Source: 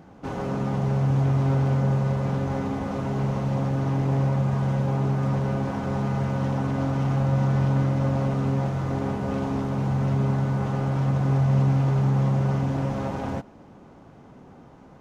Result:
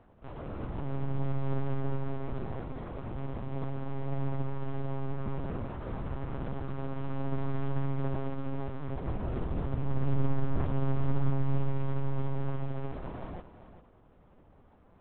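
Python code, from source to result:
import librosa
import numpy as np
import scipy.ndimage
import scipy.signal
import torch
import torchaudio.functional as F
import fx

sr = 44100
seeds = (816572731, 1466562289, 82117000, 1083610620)

y = fx.tracing_dist(x, sr, depth_ms=0.066)
y = fx.lpc_vocoder(y, sr, seeds[0], excitation='pitch_kept', order=8)
y = fx.low_shelf(y, sr, hz=150.0, db=5.5, at=(9.07, 11.3))
y = y + 10.0 ** (-12.0 / 20.0) * np.pad(y, (int(395 * sr / 1000.0), 0))[:len(y)]
y = fx.upward_expand(y, sr, threshold_db=-27.0, expansion=1.5)
y = y * librosa.db_to_amplitude(-5.5)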